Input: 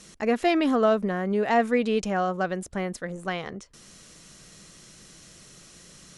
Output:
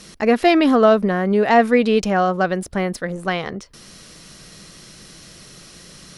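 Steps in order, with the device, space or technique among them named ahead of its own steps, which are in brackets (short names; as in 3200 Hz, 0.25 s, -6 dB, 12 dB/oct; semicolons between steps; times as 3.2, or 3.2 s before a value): exciter from parts (in parallel at -5.5 dB: HPF 4900 Hz 24 dB/oct + soft clip -33.5 dBFS, distortion -14 dB + HPF 3600 Hz 24 dB/oct); on the sum: gain +8 dB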